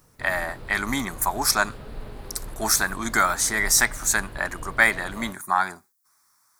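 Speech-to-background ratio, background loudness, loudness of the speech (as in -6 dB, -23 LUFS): 18.5 dB, -41.5 LUFS, -23.0 LUFS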